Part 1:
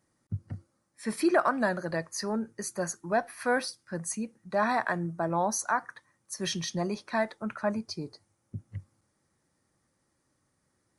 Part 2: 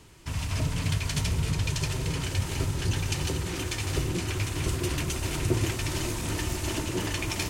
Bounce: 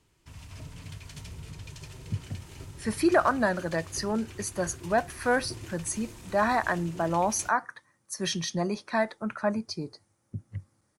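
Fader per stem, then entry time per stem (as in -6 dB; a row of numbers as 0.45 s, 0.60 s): +2.0 dB, -15.0 dB; 1.80 s, 0.00 s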